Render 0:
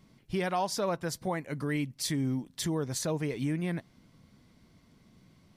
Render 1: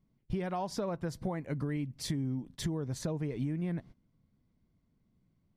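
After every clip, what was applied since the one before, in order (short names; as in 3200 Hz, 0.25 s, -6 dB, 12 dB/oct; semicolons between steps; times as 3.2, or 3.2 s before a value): gate -49 dBFS, range -19 dB; tilt -2.5 dB/oct; compressor, threshold -31 dBFS, peak gain reduction 10 dB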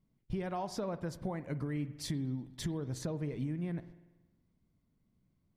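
spring tank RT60 1.1 s, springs 47 ms, chirp 75 ms, DRR 13.5 dB; gain -2.5 dB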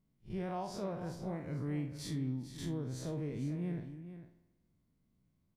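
time blur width 90 ms; on a send: echo 0.449 s -11.5 dB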